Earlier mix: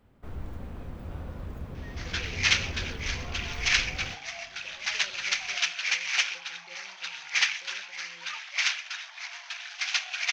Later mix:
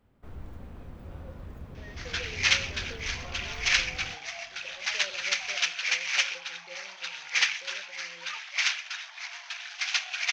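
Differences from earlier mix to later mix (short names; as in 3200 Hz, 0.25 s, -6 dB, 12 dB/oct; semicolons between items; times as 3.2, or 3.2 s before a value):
speech: add bell 680 Hz +13.5 dB 0.74 oct; first sound -4.5 dB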